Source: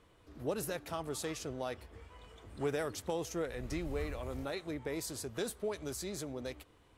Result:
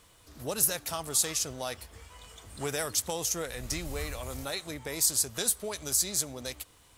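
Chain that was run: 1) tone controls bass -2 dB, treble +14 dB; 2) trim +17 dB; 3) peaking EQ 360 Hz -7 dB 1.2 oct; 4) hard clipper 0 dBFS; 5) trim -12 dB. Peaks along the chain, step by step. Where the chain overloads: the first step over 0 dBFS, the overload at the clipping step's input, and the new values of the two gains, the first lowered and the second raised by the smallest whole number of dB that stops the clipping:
-14.0 dBFS, +3.0 dBFS, +3.0 dBFS, 0.0 dBFS, -12.0 dBFS; step 2, 3.0 dB; step 2 +14 dB, step 5 -9 dB

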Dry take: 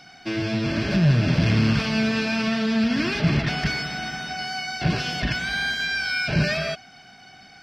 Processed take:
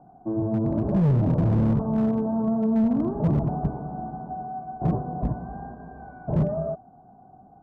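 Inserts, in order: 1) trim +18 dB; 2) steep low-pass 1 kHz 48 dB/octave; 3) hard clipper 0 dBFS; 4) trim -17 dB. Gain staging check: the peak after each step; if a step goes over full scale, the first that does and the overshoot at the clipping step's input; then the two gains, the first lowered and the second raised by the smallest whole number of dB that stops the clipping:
+9.5 dBFS, +9.0 dBFS, 0.0 dBFS, -17.0 dBFS; step 1, 9.0 dB; step 1 +9 dB, step 4 -8 dB

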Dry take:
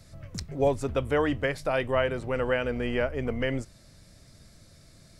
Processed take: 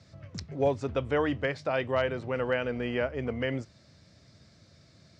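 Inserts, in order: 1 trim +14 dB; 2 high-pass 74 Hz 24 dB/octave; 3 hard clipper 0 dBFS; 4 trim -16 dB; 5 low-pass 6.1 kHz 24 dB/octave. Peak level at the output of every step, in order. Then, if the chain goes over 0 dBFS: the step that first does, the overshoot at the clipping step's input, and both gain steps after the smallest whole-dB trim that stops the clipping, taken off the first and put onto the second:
+2.0 dBFS, +3.0 dBFS, 0.0 dBFS, -16.0 dBFS, -15.5 dBFS; step 1, 3.0 dB; step 1 +11 dB, step 4 -13 dB

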